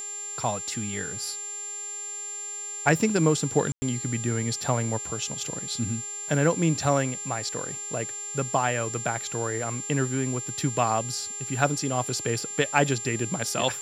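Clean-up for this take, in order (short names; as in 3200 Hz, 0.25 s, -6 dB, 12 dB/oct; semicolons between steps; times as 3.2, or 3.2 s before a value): clip repair -6 dBFS; de-hum 407.7 Hz, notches 27; notch 7300 Hz, Q 30; room tone fill 3.72–3.82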